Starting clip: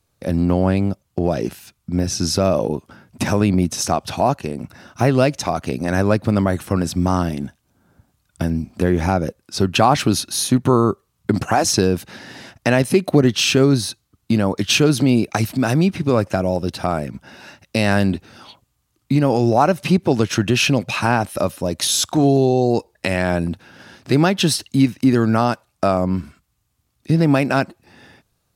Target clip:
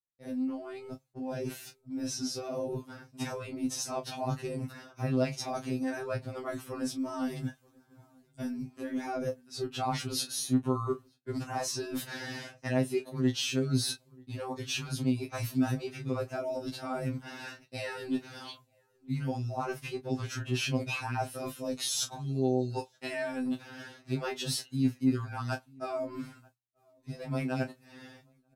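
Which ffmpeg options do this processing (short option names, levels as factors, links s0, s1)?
-filter_complex "[0:a]areverse,acompressor=threshold=0.0447:ratio=8,areverse,asplit=2[s0][s1];[s1]adelay=27,volume=0.316[s2];[s0][s2]amix=inputs=2:normalize=0,asplit=2[s3][s4];[s4]adelay=932.9,volume=0.0562,highshelf=f=4000:g=-21[s5];[s3][s5]amix=inputs=2:normalize=0,dynaudnorm=f=630:g=7:m=1.41,agate=range=0.0224:threshold=0.00447:ratio=3:detection=peak,afftfilt=real='re*2.45*eq(mod(b,6),0)':imag='im*2.45*eq(mod(b,6),0)':win_size=2048:overlap=0.75,volume=0.668"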